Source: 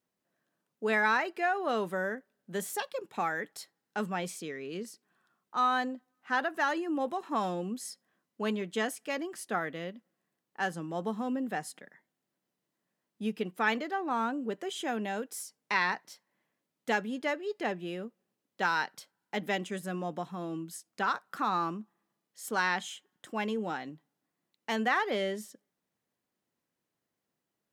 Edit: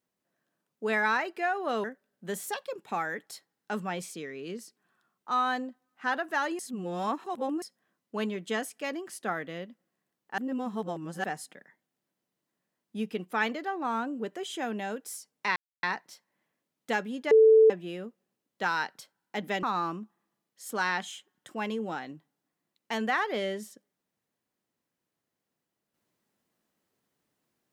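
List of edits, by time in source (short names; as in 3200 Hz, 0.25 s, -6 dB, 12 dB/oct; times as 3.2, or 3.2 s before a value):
1.84–2.1 cut
6.85–7.88 reverse
10.64–11.5 reverse
15.82 insert silence 0.27 s
17.3–17.69 bleep 441 Hz -14 dBFS
19.62–21.41 cut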